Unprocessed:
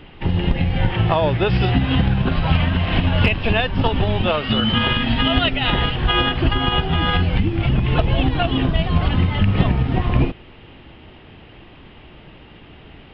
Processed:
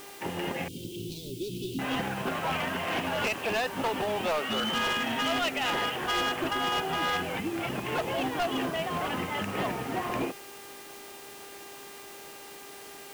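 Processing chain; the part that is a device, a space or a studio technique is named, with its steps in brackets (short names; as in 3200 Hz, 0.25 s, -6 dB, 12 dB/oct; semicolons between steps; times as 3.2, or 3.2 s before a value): aircraft radio (BPF 380–2400 Hz; hard clip -22 dBFS, distortion -9 dB; buzz 400 Hz, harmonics 29, -46 dBFS -4 dB/oct; white noise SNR 19 dB); 0.68–1.79 elliptic band-stop 360–3500 Hz, stop band 40 dB; gain -3 dB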